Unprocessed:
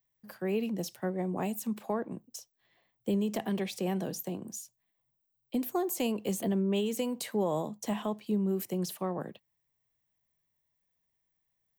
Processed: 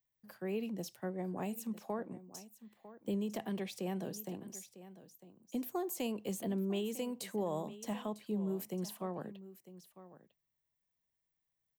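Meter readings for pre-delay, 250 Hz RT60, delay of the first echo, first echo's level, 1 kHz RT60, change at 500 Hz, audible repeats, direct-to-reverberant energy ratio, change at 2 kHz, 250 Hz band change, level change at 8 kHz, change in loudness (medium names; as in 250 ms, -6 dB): no reverb, no reverb, 951 ms, -15.5 dB, no reverb, -6.5 dB, 1, no reverb, -6.5 dB, -6.5 dB, -6.5 dB, -6.5 dB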